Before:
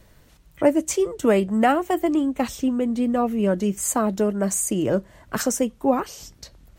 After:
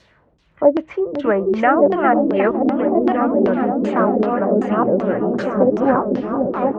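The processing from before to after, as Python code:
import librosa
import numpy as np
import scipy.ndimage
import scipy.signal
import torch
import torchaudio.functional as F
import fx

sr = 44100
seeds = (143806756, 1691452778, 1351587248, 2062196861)

y = fx.reverse_delay(x, sr, ms=628, wet_db=-1.0)
y = fx.mod_noise(y, sr, seeds[0], snr_db=17, at=(3.53, 4.26))
y = fx.tilt_eq(y, sr, slope=-2.5, at=(5.53, 6.09))
y = fx.echo_opening(y, sr, ms=509, hz=400, octaves=1, feedback_pct=70, wet_db=-3)
y = fx.filter_lfo_lowpass(y, sr, shape='saw_down', hz=2.6, low_hz=330.0, high_hz=5200.0, q=1.8)
y = scipy.signal.sosfilt(scipy.signal.butter(2, 60.0, 'highpass', fs=sr, output='sos'), y)
y = fx.env_lowpass_down(y, sr, base_hz=2000.0, full_db=-16.5)
y = fx.low_shelf(y, sr, hz=400.0, db=-8.0)
y = F.gain(torch.from_numpy(y), 3.5).numpy()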